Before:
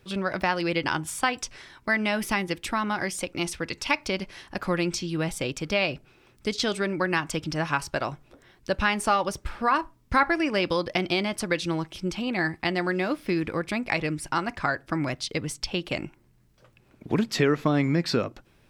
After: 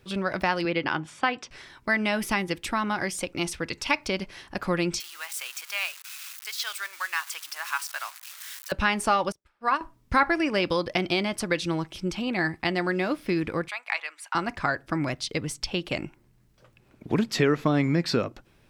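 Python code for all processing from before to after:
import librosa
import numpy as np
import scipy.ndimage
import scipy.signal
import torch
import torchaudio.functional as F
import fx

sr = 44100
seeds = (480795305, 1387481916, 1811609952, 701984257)

y = fx.chain(x, sr, fx.bandpass_edges(low_hz=140.0, high_hz=3500.0),
    fx.notch(hz=960.0, q=22.0), at=(0.65, 1.51))
y = fx.chain(y, sr, fx.crossing_spikes(level_db=-23.5),
    fx.highpass(hz=1100.0, slope=24),
    fx.tilt_eq(slope=-2.0), at=(5.0, 8.72))
y = fx.chain(y, sr, fx.low_shelf(hz=160.0, db=-10.0),
    fx.upward_expand(threshold_db=-41.0, expansion=2.5), at=(9.32, 9.81))
y = fx.chain(y, sr, fx.highpass(hz=880.0, slope=24),
    fx.high_shelf(hz=5100.0, db=-6.0),
    fx.notch(hz=5300.0, q=6.2), at=(13.68, 14.35))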